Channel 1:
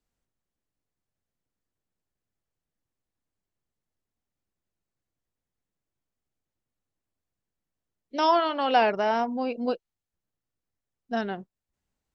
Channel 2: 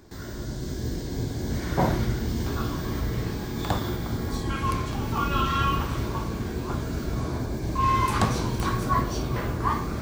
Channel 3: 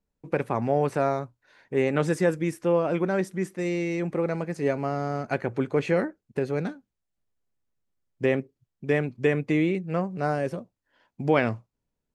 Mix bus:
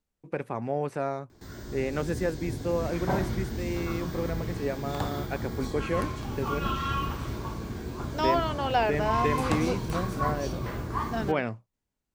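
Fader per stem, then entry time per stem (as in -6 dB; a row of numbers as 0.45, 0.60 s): -4.0, -5.5, -6.0 dB; 0.00, 1.30, 0.00 s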